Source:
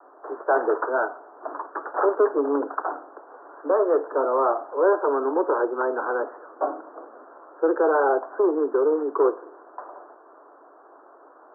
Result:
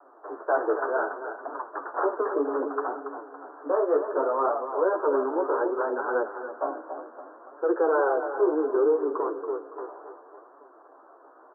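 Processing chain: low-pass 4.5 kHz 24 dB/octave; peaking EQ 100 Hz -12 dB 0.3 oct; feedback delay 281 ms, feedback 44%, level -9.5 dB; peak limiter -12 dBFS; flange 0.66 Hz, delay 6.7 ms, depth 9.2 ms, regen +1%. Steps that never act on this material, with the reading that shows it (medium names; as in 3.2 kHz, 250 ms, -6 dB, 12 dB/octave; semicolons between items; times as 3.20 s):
low-pass 4.5 kHz: input has nothing above 1.7 kHz; peaking EQ 100 Hz: input has nothing below 240 Hz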